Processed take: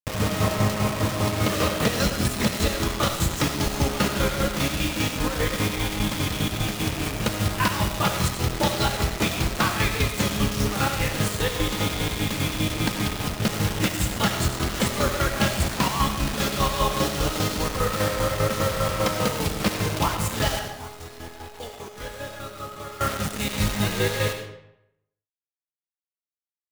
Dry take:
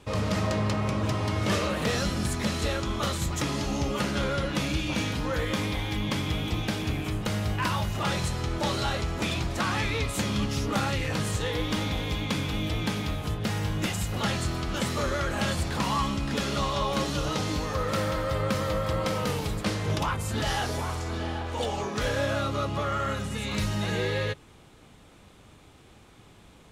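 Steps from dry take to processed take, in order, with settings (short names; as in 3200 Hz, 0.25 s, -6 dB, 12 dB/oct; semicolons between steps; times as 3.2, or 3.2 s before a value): chopper 5 Hz, depth 65%, duty 40%; bit-crush 6-bit; 20.59–23.01 resonator 420 Hz, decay 0.54 s, mix 80%; reverb RT60 0.80 s, pre-delay 45 ms, DRR 6.5 dB; gain +6 dB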